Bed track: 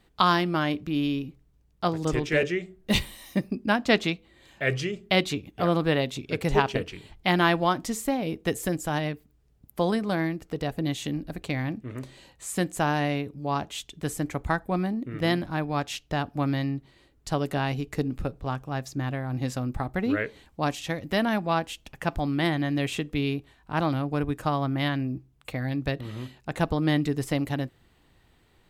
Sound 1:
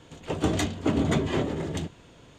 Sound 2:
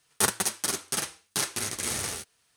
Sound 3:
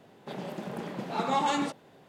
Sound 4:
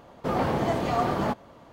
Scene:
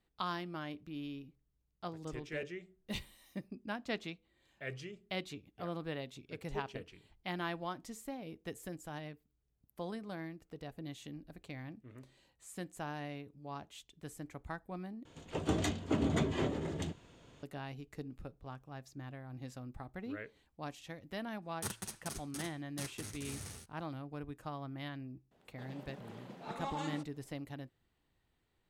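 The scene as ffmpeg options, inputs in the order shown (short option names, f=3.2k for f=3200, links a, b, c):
-filter_complex "[0:a]volume=-17dB[a];[2:a]bass=f=250:g=13,treble=f=4k:g=1[b];[a]asplit=2[c][d];[c]atrim=end=15.054[e];[1:a]atrim=end=2.38,asetpts=PTS-STARTPTS,volume=-7.5dB[f];[d]atrim=start=17.426[g];[b]atrim=end=2.56,asetpts=PTS-STARTPTS,volume=-18dB,afade=t=in:d=0.004:c=hsin,afade=t=out:st=2.556:d=0.004:c=hsin,adelay=21420[h];[3:a]atrim=end=2.08,asetpts=PTS-STARTPTS,volume=-14dB,afade=t=in:d=0.004:c=hsin,afade=t=out:st=2.076:d=0.004:c=hsin,adelay=25310[i];[e][f]acrossfade=d=0.004:c1=hsin:c2=hsin[j];[j][g]acrossfade=d=0.004:c1=hsin:c2=hsin[k];[k][h][i]amix=inputs=3:normalize=0"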